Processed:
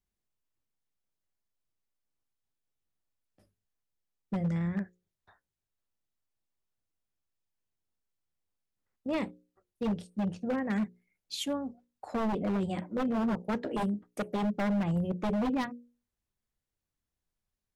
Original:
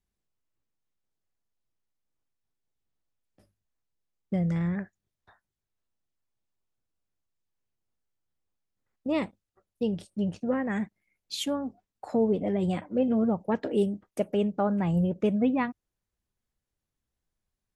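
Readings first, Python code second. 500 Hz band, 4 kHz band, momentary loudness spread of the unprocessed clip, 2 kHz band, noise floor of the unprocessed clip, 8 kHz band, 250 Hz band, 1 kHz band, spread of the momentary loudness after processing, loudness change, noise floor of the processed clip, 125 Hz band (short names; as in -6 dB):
-7.0 dB, -2.5 dB, 9 LU, -1.5 dB, under -85 dBFS, -2.5 dB, -3.5 dB, -1.0 dB, 8 LU, -4.0 dB, under -85 dBFS, -3.5 dB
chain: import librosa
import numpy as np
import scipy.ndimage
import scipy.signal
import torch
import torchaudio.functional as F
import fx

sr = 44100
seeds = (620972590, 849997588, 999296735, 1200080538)

y = fx.hum_notches(x, sr, base_hz=60, count=9)
y = fx.dynamic_eq(y, sr, hz=210.0, q=7.6, threshold_db=-43.0, ratio=4.0, max_db=6)
y = 10.0 ** (-21.5 / 20.0) * (np.abs((y / 10.0 ** (-21.5 / 20.0) + 3.0) % 4.0 - 2.0) - 1.0)
y = y * librosa.db_to_amplitude(-3.0)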